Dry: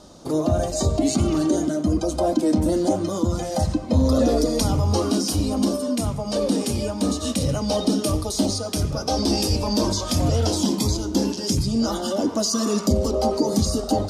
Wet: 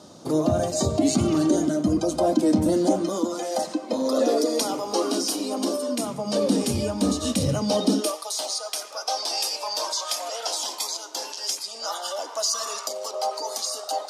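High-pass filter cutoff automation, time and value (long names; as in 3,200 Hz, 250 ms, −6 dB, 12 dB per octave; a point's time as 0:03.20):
high-pass filter 24 dB per octave
0:02.68 100 Hz
0:03.33 300 Hz
0:05.89 300 Hz
0:06.63 81 Hz
0:07.39 81 Hz
0:07.94 170 Hz
0:08.17 670 Hz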